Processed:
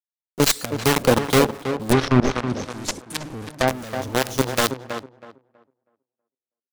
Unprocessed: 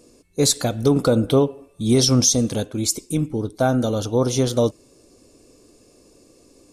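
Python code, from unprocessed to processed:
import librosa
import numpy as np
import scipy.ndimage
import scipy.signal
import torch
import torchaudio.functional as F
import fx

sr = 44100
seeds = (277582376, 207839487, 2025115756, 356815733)

p1 = fx.tracing_dist(x, sr, depth_ms=0.041)
p2 = fx.quant_companded(p1, sr, bits=2)
p3 = fx.harmonic_tremolo(p2, sr, hz=2.7, depth_pct=50, crossover_hz=1000.0)
p4 = p3 + fx.echo_tape(p3, sr, ms=322, feedback_pct=25, wet_db=-6, lp_hz=1700.0, drive_db=0.0, wow_cents=6, dry=0)
p5 = fx.env_lowpass_down(p4, sr, base_hz=2400.0, full_db=-8.0, at=(1.92, 3.68))
y = p5 * 10.0 ** (-6.0 / 20.0)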